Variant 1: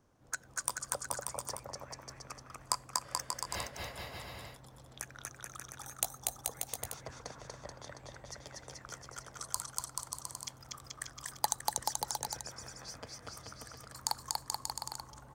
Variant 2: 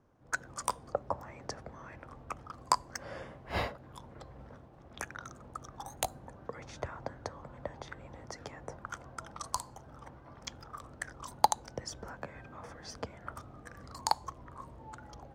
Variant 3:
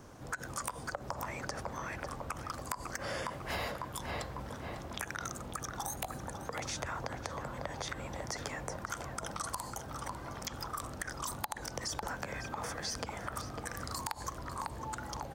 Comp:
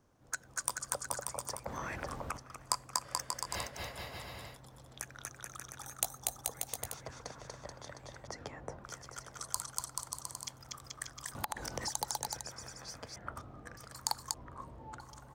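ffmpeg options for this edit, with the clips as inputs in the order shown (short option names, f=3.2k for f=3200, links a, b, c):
-filter_complex "[2:a]asplit=2[a][b];[1:a]asplit=3[c][d][e];[0:a]asplit=6[f][g][h][i][j][k];[f]atrim=end=1.662[l];[a]atrim=start=1.658:end=2.372[m];[g]atrim=start=2.368:end=8.272[n];[c]atrim=start=8.268:end=8.842[o];[h]atrim=start=8.838:end=11.352[p];[b]atrim=start=11.348:end=11.882[q];[i]atrim=start=11.878:end=13.162[r];[d]atrim=start=13.158:end=13.772[s];[j]atrim=start=13.768:end=14.342[t];[e]atrim=start=14.338:end=15.002[u];[k]atrim=start=14.998[v];[l][m]acrossfade=d=0.004:c1=hsin:c2=hsin[w];[w][n]acrossfade=d=0.004:c1=hsin:c2=hsin[x];[x][o]acrossfade=d=0.004:c1=hsin:c2=hsin[y];[y][p]acrossfade=d=0.004:c1=hsin:c2=hsin[z];[z][q]acrossfade=d=0.004:c1=hsin:c2=hsin[aa];[aa][r]acrossfade=d=0.004:c1=hsin:c2=hsin[ab];[ab][s]acrossfade=d=0.004:c1=hsin:c2=hsin[ac];[ac][t]acrossfade=d=0.004:c1=hsin:c2=hsin[ad];[ad][u]acrossfade=d=0.004:c1=hsin:c2=hsin[ae];[ae][v]acrossfade=d=0.004:c1=hsin:c2=hsin"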